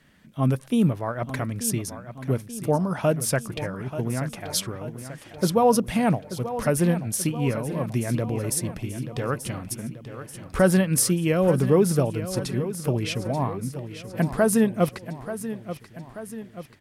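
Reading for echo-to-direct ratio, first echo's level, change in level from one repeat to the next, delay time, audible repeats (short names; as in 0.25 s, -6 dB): -10.5 dB, -12.0 dB, -5.0 dB, 0.884 s, 4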